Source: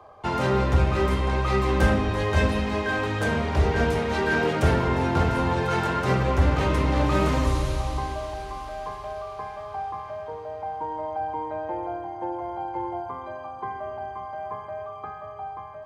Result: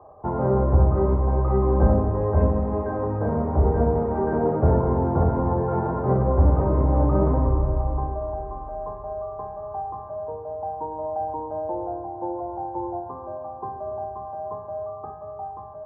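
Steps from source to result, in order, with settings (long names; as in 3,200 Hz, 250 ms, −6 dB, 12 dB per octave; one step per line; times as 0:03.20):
inverse Chebyshev low-pass filter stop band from 5,500 Hz, stop band 80 dB
flutter between parallel walls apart 10.2 metres, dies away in 0.33 s
level +2 dB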